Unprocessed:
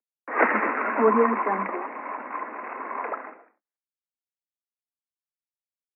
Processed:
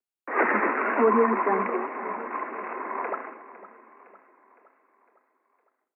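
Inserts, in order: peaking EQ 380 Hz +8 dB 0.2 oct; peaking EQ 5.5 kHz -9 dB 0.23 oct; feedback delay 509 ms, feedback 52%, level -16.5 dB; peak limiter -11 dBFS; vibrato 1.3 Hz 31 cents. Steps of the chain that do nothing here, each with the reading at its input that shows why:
peaking EQ 5.5 kHz: input has nothing above 2.6 kHz

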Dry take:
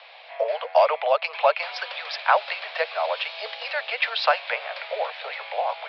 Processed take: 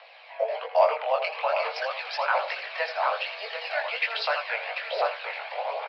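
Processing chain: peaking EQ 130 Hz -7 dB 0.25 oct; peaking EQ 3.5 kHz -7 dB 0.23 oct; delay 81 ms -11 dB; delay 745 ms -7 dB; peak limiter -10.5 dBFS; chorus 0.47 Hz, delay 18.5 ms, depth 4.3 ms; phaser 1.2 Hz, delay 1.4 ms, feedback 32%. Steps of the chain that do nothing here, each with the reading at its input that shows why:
peaking EQ 130 Hz: input has nothing below 400 Hz

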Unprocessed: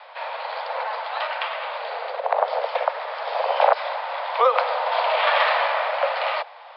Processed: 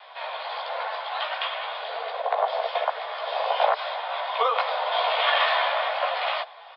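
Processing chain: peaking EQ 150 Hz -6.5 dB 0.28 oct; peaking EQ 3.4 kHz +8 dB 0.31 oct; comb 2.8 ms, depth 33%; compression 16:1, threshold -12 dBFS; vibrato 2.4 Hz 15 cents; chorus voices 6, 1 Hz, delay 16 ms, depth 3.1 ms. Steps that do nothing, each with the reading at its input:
peaking EQ 150 Hz: input has nothing below 400 Hz

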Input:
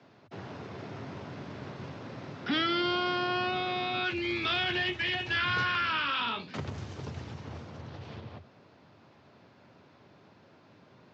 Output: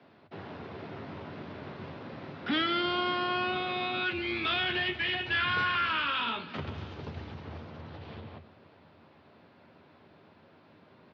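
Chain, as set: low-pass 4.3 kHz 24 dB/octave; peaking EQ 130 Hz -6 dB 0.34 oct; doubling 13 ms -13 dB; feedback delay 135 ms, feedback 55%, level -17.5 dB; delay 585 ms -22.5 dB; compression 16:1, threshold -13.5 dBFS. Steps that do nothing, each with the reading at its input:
compression, threshold -13.5 dBFS: peak at its input -17.5 dBFS

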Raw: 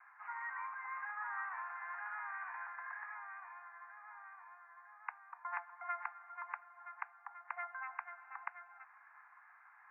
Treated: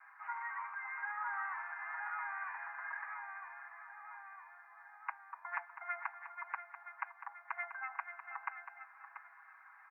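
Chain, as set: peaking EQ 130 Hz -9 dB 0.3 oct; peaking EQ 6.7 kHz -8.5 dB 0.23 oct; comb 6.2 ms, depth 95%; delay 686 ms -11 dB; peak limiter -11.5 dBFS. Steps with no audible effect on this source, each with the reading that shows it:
peaking EQ 130 Hz: input has nothing below 640 Hz; peaking EQ 6.7 kHz: input has nothing above 2.6 kHz; peak limiter -11.5 dBFS: peak at its input -24.0 dBFS

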